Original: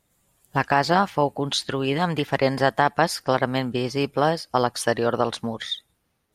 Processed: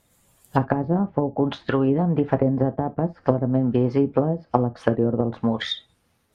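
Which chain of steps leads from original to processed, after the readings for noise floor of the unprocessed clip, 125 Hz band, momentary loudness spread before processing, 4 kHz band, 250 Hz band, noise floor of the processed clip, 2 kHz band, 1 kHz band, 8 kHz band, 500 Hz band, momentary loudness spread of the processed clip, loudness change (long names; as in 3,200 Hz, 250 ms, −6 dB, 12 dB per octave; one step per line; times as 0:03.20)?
−72 dBFS, +5.0 dB, 7 LU, −6.5 dB, +5.5 dB, −66 dBFS, −10.0 dB, −6.0 dB, below −15 dB, 0.0 dB, 5 LU, +0.5 dB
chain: treble cut that deepens with the level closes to 310 Hz, closed at −18 dBFS
reverb whose tail is shaped and stops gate 90 ms falling, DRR 9.5 dB
level +5 dB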